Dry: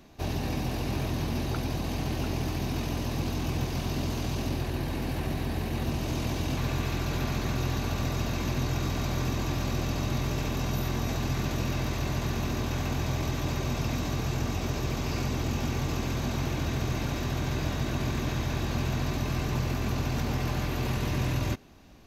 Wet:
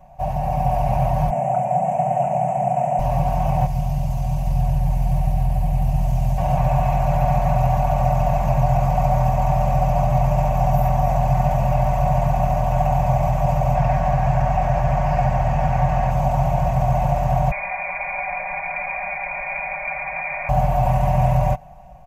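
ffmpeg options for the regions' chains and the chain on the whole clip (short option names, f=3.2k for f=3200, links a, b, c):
-filter_complex "[0:a]asettb=1/sr,asplit=3[a][b][c];[a]atrim=end=1.304[d];[b]atrim=start=1.3:end=2.99,asetpts=PTS-STARTPTS,afade=t=in:d=0.004:c=qsin,afade=t=out:st=1.686:d=0.004:c=qsin,asuperstop=centerf=4300:order=4:qfactor=0.9,highpass=f=160:w=0.5412,highpass=f=160:w=1.3066,equalizer=f=310:t=q:w=4:g=-8,equalizer=f=680:t=q:w=4:g=5,equalizer=f=1.1k:t=q:w=4:g=-9,equalizer=f=1.6k:t=q:w=4:g=-5,equalizer=f=4.3k:t=q:w=4:g=7,equalizer=f=7.6k:t=q:w=4:g=9,lowpass=f=8.9k:w=0.5412,lowpass=f=8.9k:w=1.3066,asplit=2[e][f];[f]adelay=30,volume=-11.5dB[g];[e][g]amix=inputs=2:normalize=0,atrim=end_sample=74529[h];[c]atrim=start=2.986[i];[d][h]acrossfade=d=0.004:c1=hsin:c2=qsin[j];[j][i]acrossfade=d=0.004:c1=qsin:c2=hsin,asettb=1/sr,asplit=3[k][l][m];[k]atrim=end=3.664[n];[l]atrim=start=3.66:end=6.38,asetpts=PTS-STARTPTS,afade=t=in:d=0.004:c=qsin,afade=t=out:st=2.716:d=0.004:c=qsin,acrossover=split=210|3000[o][p][q];[p]acompressor=threshold=-47dB:ratio=4:attack=3.2:release=140:knee=2.83:detection=peak[r];[o][r][q]amix=inputs=3:normalize=0,aecho=1:1:801:0.531,atrim=end_sample=119952[s];[m]atrim=start=6.376[t];[n][s]acrossfade=d=0.004:c1=hsin:c2=qsin[u];[u][t]acrossfade=d=0.004:c1=qsin:c2=hsin,asettb=1/sr,asplit=3[v][w][x];[v]atrim=end=13.754[y];[w]atrim=start=13.75:end=16.11,asetpts=PTS-STARTPTS,afade=t=in:d=0.004:c=qsin,afade=t=out:st=2.356:d=0.004:c=qsin,acrossover=split=6300[z][aa];[aa]acompressor=threshold=-57dB:ratio=4:attack=1:release=60[ab];[z][ab]amix=inputs=2:normalize=0,equalizer=f=1.7k:t=o:w=0.61:g=8.5[ac];[x]atrim=start=16.106[ad];[y][ac]acrossfade=d=0.004:c1=hsin:c2=qsin[ae];[ae][ad]acrossfade=d=0.004:c1=qsin:c2=hsin,asettb=1/sr,asplit=3[af][ag][ah];[af]atrim=end=17.514[ai];[ag]atrim=start=17.51:end=20.49,asetpts=PTS-STARTPTS,afade=t=in:d=0.004:c=qsin,afade=t=out:st=2.976:d=0.004:c=qsin,highpass=f=110:w=0.5412,highpass=f=110:w=1.3066,aecho=1:1:5:0.7,atrim=end_sample=131418,lowpass=f=2.2k:t=q:w=0.5098,lowpass=f=2.2k:t=q:w=0.6013,lowpass=f=2.2k:t=q:w=0.9,lowpass=f=2.2k:t=q:w=2.563,afreqshift=-2600[aj];[ah]atrim=start=20.486[ak];[ai][aj]acrossfade=d=0.004:c1=hsin:c2=qsin[al];[al][ak]acrossfade=d=0.004:c1=qsin:c2=hsin,firequalizer=gain_entry='entry(140,0);entry(220,-16);entry(380,-28);entry(650,11);entry(1300,-13);entry(2500,-13);entry(3800,-27);entry(7600,-14)':delay=0.05:min_phase=1,dynaudnorm=f=230:g=5:m=4.5dB,aecho=1:1:5.4:0.75,volume=7.5dB"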